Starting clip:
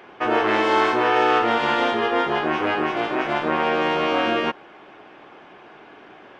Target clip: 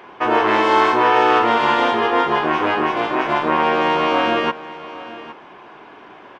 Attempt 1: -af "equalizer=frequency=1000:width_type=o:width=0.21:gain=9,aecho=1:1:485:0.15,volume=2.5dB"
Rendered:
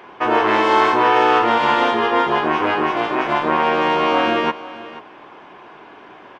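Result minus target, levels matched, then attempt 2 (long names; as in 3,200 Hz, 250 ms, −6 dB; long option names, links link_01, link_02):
echo 328 ms early
-af "equalizer=frequency=1000:width_type=o:width=0.21:gain=9,aecho=1:1:813:0.15,volume=2.5dB"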